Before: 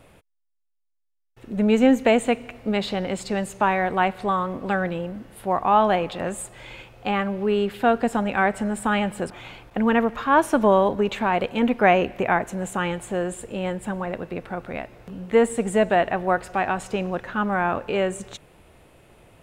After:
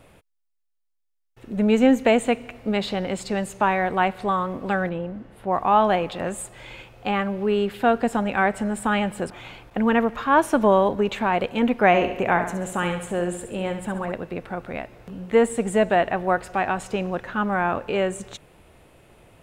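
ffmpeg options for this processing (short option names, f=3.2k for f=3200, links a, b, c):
-filter_complex "[0:a]asettb=1/sr,asplit=3[a][b][c];[a]atrim=end=4.894[d];[b]atrim=start=4.89:end=5.53,asetpts=PTS-STARTPTS,afade=t=in:d=0.004:c=qsin,afade=t=out:st=0.636:d=0.004:c=qsin,lowpass=f=1.9k:p=1[e];[c]atrim=start=5.526[f];[d][e]acrossfade=d=0.004:c1=hsin:c2=qsin[g];[g][f]acrossfade=d=0.004:c1=qsin:c2=hsin,asettb=1/sr,asplit=3[h][i][j];[h]atrim=end=11.874[k];[i]atrim=start=11.87:end=14.12,asetpts=PTS-STARTPTS,afade=t=in:d=0.004:c=qsin,afade=t=out:st=2.246:d=0.004:c=qsin,aecho=1:1:68|136|204|272|340|408:0.355|0.174|0.0852|0.0417|0.0205|0.01,atrim=end_sample=99225[l];[j]atrim=start=14.116[m];[k][l]acrossfade=d=0.004:c1=hsin:c2=qsin[n];[n][m]acrossfade=d=0.004:c1=qsin:c2=hsin"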